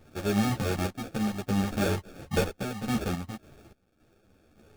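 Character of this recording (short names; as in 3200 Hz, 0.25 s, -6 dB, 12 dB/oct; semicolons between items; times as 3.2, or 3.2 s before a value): aliases and images of a low sample rate 1000 Hz, jitter 0%; random-step tremolo, depth 90%; a quantiser's noise floor 12-bit, dither none; a shimmering, thickened sound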